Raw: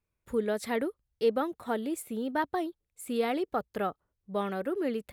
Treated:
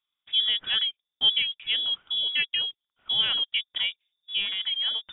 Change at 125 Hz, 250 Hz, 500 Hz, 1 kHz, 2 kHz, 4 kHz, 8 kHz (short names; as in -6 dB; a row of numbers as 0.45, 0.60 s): n/a, under -20 dB, -23.5 dB, -14.0 dB, +8.0 dB, +27.0 dB, under -35 dB